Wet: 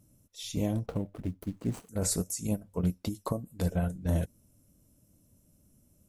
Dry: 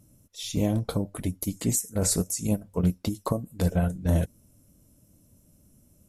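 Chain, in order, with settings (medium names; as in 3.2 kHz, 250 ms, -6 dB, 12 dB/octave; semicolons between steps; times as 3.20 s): 0.86–1.89 s: median filter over 25 samples; trim -5 dB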